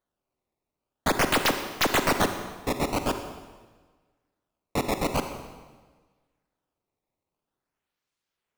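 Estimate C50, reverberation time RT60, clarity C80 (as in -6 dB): 7.5 dB, 1.4 s, 9.0 dB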